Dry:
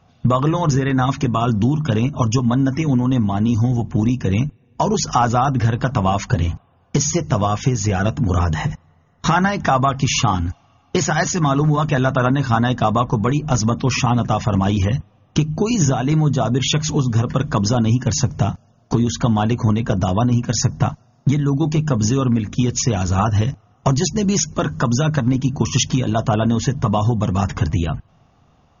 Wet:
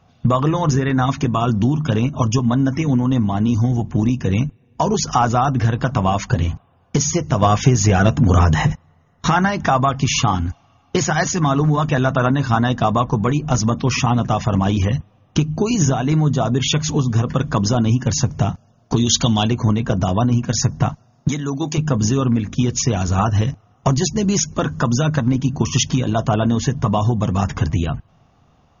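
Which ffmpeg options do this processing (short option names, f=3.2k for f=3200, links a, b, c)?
-filter_complex "[0:a]asettb=1/sr,asplit=3[a][b][c];[a]atrim=end=7.424[d];[b]atrim=start=7.42:end=8.73,asetpts=PTS-STARTPTS,afade=t=in:d=0.004:c=qsin,afade=t=out:st=1.306:d=0.004:c=qsin,acontrast=28[e];[c]atrim=start=8.726[f];[d][e]acrossfade=d=0.004:c1=hsin:c2=qsin[g];[g][f]acrossfade=d=0.004:c1=qsin:c2=hsin,asettb=1/sr,asplit=3[h][i][j];[h]atrim=end=18.964[k];[i]atrim=start=18.96:end=19.48,asetpts=PTS-STARTPTS,afade=t=in:d=0.004:c=qsin,afade=t=out:st=0.516:d=0.004:c=qsin,highshelf=f=2.3k:t=q:w=1.5:g=10[l];[j]atrim=start=19.476[m];[k][l]acrossfade=d=0.004:c1=hsin:c2=qsin[n];[n][m]acrossfade=d=0.004:c1=qsin:c2=hsin,asettb=1/sr,asplit=3[o][p][q];[o]atrim=end=21.284[r];[p]atrim=start=21.28:end=21.78,asetpts=PTS-STARTPTS,afade=t=in:d=0.004:c=qsin,afade=t=out:st=0.496:d=0.004:c=qsin,aemphasis=mode=production:type=bsi[s];[q]atrim=start=21.776[t];[r][s]acrossfade=d=0.004:c1=hsin:c2=qsin[u];[u][t]acrossfade=d=0.004:c1=qsin:c2=hsin"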